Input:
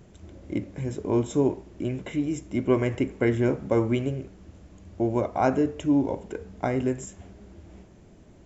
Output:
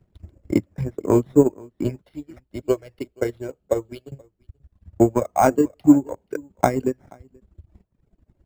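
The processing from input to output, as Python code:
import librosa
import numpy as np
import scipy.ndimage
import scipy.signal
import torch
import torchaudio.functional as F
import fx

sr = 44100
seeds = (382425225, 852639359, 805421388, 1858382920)

y = fx.dereverb_blind(x, sr, rt60_s=1.6)
y = fx.graphic_eq(y, sr, hz=(125, 250, 1000, 2000, 4000), db=(-8, -12, -8, -10, 6), at=(2.01, 4.12))
y = np.repeat(y[::6], 6)[:len(y)]
y = fx.high_shelf(y, sr, hz=4000.0, db=-8.5)
y = fx.transient(y, sr, attack_db=10, sustain_db=-11)
y = y + 10.0 ** (-22.5 / 20.0) * np.pad(y, (int(481 * sr / 1000.0), 0))[:len(y)]
y = fx.band_widen(y, sr, depth_pct=40)
y = y * librosa.db_to_amplitude(1.0)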